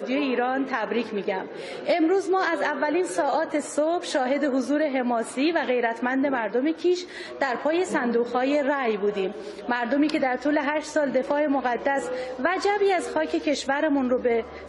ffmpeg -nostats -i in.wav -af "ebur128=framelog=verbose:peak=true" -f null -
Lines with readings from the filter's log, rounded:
Integrated loudness:
  I:         -24.6 LUFS
  Threshold: -34.7 LUFS
Loudness range:
  LRA:         0.8 LU
  Threshold: -44.6 LUFS
  LRA low:   -25.0 LUFS
  LRA high:  -24.2 LUFS
True peak:
  Peak:      -10.0 dBFS